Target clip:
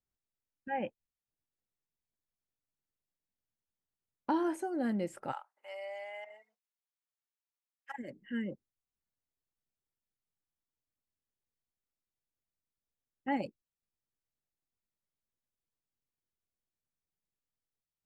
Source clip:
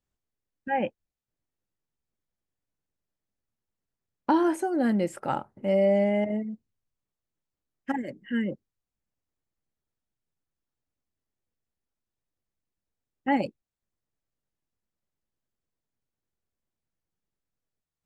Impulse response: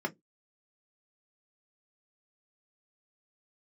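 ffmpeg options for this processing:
-filter_complex "[0:a]asplit=3[a][b][c];[a]afade=t=out:st=5.31:d=0.02[d];[b]highpass=f=840:w=0.5412,highpass=f=840:w=1.3066,afade=t=in:st=5.31:d=0.02,afade=t=out:st=7.98:d=0.02[e];[c]afade=t=in:st=7.98:d=0.02[f];[d][e][f]amix=inputs=3:normalize=0,volume=-8.5dB"

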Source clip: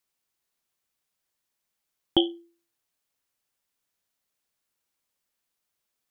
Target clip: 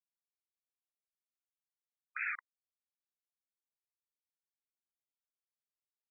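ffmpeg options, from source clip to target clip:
-filter_complex "[0:a]acrusher=bits=6:mode=log:mix=0:aa=0.000001,asplit=2[a][b];[b]aecho=0:1:74|148|222|296|370:0.316|0.158|0.0791|0.0395|0.0198[c];[a][c]amix=inputs=2:normalize=0,acrusher=bits=4:mix=0:aa=0.000001,afftfilt=real='re*between(b*sr/1024,440*pow(1900/440,0.5+0.5*sin(2*PI*1*pts/sr))/1.41,440*pow(1900/440,0.5+0.5*sin(2*PI*1*pts/sr))*1.41)':imag='im*between(b*sr/1024,440*pow(1900/440,0.5+0.5*sin(2*PI*1*pts/sr))/1.41,440*pow(1900/440,0.5+0.5*sin(2*PI*1*pts/sr))*1.41)':win_size=1024:overlap=0.75,volume=6dB"

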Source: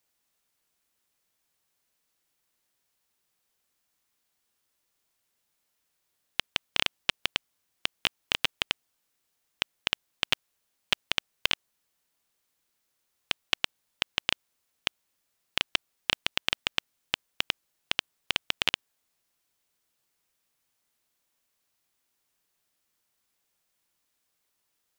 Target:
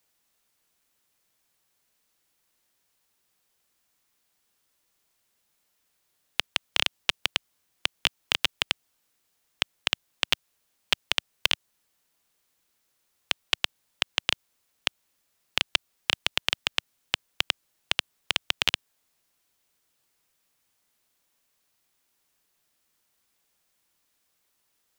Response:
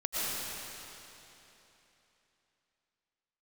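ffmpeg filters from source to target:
-filter_complex "[0:a]acrossover=split=140|3000[a][b][c];[b]acompressor=threshold=-31dB:ratio=2[d];[a][d][c]amix=inputs=3:normalize=0,volume=4dB"

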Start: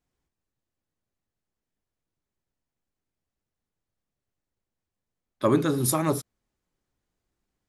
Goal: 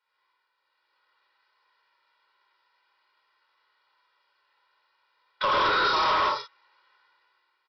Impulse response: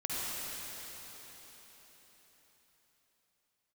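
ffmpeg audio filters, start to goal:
-filter_complex "[0:a]highpass=f=1.1k:t=q:w=2,aecho=1:1:26|48:0.376|0.335,acompressor=threshold=-32dB:ratio=4,aecho=1:1:2.1:0.92[a];[1:a]atrim=start_sample=2205,afade=t=out:st=0.26:d=0.01,atrim=end_sample=11907[b];[a][b]afir=irnorm=-1:irlink=0,dynaudnorm=f=140:g=11:m=10dB,aresample=11025,asoftclip=type=tanh:threshold=-26.5dB,aresample=44100,volume=6dB"

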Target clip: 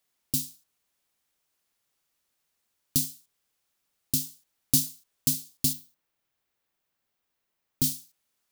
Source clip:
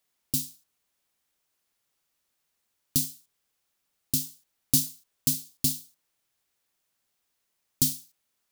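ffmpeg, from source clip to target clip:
-filter_complex "[0:a]asettb=1/sr,asplit=3[a][b][c];[a]atrim=end=5.734[d];[b]atrim=start=5.73:end=7.84,asetpts=PTS-STARTPTS,afade=t=in:d=0.004:c=qsin,afade=t=out:st=2.106:d=0.004:c=qsin,equalizer=f=8.5k:w=0.43:g=-8.5[e];[c]atrim=start=7.836[f];[d][e]acrossfade=d=0.004:c1=hsin:c2=qsin[g];[g][f]acrossfade=d=0.004:c1=qsin:c2=hsin"

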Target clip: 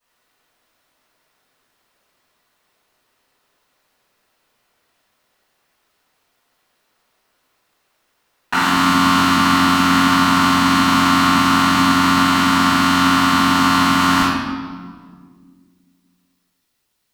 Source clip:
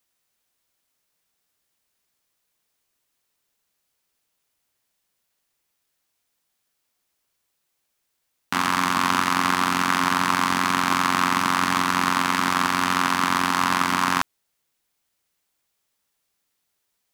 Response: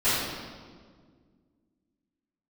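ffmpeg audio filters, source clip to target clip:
-filter_complex "[0:a]asetnsamples=n=441:p=0,asendcmd='8.53 equalizer g -3',equalizer=f=920:w=0.36:g=9[a];[1:a]atrim=start_sample=2205[b];[a][b]afir=irnorm=-1:irlink=0,volume=-7dB"

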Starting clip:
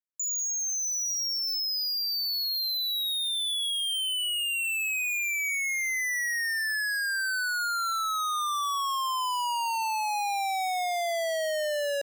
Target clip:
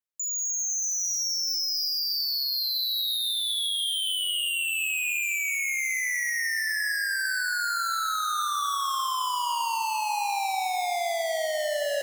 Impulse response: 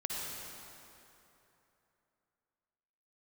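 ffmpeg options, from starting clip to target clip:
-filter_complex "[0:a]asplit=2[a][b];[1:a]atrim=start_sample=2205,highshelf=f=4.5k:g=6,adelay=145[c];[b][c]afir=irnorm=-1:irlink=0,volume=-10dB[d];[a][d]amix=inputs=2:normalize=0"

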